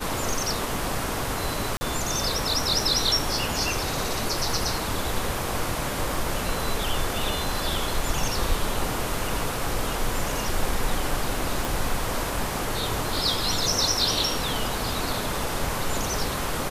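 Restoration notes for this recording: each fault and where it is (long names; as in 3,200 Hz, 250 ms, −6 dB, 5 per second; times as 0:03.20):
0:01.77–0:01.81: drop-out 40 ms
0:11.65: click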